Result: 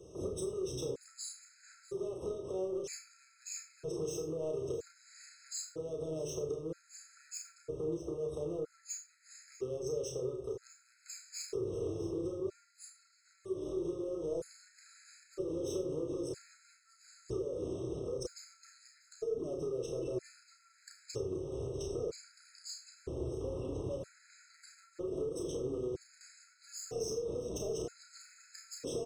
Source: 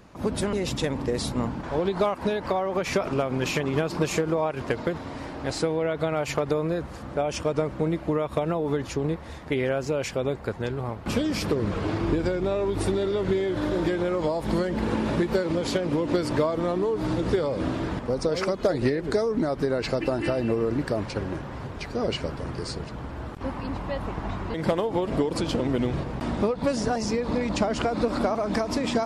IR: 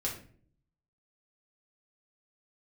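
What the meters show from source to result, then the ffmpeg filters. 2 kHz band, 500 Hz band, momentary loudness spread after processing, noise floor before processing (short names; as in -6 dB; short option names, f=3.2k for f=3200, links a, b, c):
-26.5 dB, -12.0 dB, 18 LU, -38 dBFS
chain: -filter_complex "[0:a]highpass=50,acrossover=split=180[a][b];[b]asoftclip=type=hard:threshold=-25dB[c];[a][c]amix=inputs=2:normalize=0,firequalizer=gain_entry='entry(150,0);entry(220,-14);entry(380,13);entry(820,-14);entry(3400,-6);entry(6700,11);entry(13000,-13)':delay=0.05:min_phase=1,acompressor=threshold=-32dB:ratio=6,asoftclip=type=tanh:threshold=-26dB,highshelf=f=9.7k:g=9.5,asplit=2[d][e];[e]adelay=32,volume=-5dB[f];[d][f]amix=inputs=2:normalize=0,aecho=1:1:642:0.126,asplit=2[g][h];[1:a]atrim=start_sample=2205,adelay=43[i];[h][i]afir=irnorm=-1:irlink=0,volume=-10dB[j];[g][j]amix=inputs=2:normalize=0,afftfilt=real='re*gt(sin(2*PI*0.52*pts/sr)*(1-2*mod(floor(b*sr/1024/1300),2)),0)':imag='im*gt(sin(2*PI*0.52*pts/sr)*(1-2*mod(floor(b*sr/1024/1300),2)),0)':win_size=1024:overlap=0.75,volume=-4.5dB"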